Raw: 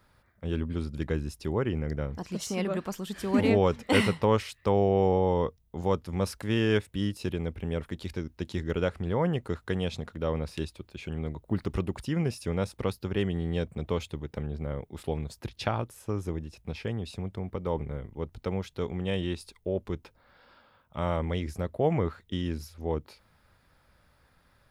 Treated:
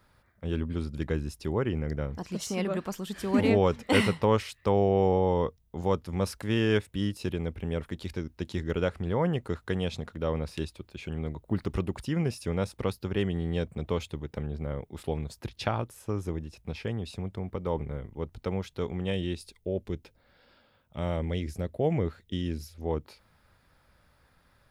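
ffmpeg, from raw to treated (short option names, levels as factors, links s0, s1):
-filter_complex "[0:a]asettb=1/sr,asplit=3[s0][s1][s2];[s0]atrim=end=19.124[s3];[s1]atrim=start=19.12:end=22.82,asetpts=PTS-STARTPTS,afade=t=in:d=0.004:c=qsin,afade=t=out:st=3.696:d=0.004:c=qsin,equalizer=f=1100:t=o:w=1:g=-9[s4];[s2]atrim=start=22.816[s5];[s3][s4]acrossfade=d=0.004:c1=hsin:c2=qsin[s6];[s6][s5]acrossfade=d=0.004:c1=qsin:c2=hsin"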